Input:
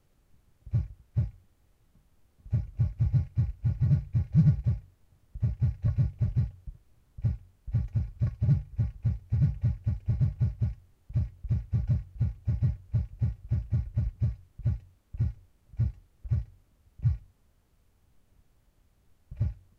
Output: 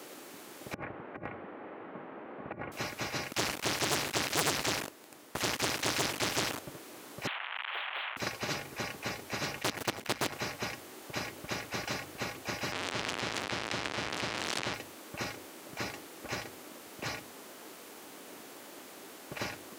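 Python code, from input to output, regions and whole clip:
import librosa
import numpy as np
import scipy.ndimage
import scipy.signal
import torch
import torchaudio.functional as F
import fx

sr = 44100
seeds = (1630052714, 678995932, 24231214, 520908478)

y = fx.chain(x, sr, fx.bessel_lowpass(hz=1400.0, order=6),
    fx.low_shelf(hz=68.0, db=-6.0),
    fx.over_compress(threshold_db=-36.0, ratio=-0.5), at=(0.74, 2.72))
y = fx.chain(y, sr, fx.leveller(passes=3),
    fx.doppler_dist(depth_ms=0.25), at=(3.31, 6.59))
y = fx.chain(y, sr, fx.delta_mod(bps=16000, step_db=-47.0),
    fx.highpass(hz=1000.0, slope=24), at=(7.27, 8.17))
y = fx.chain(y, sr, fx.peak_eq(hz=310.0, db=3.0, octaves=0.8),
    fx.leveller(passes=3),
    fx.level_steps(step_db=20), at=(9.62, 10.34))
y = fx.chain(y, sr, fx.zero_step(step_db=-41.0),
    fx.air_absorb(metres=99.0), at=(12.72, 14.74))
y = scipy.signal.sosfilt(scipy.signal.cheby1(3, 1.0, 300.0, 'highpass', fs=sr, output='sos'), y)
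y = fx.spectral_comp(y, sr, ratio=4.0)
y = y * 10.0 ** (7.5 / 20.0)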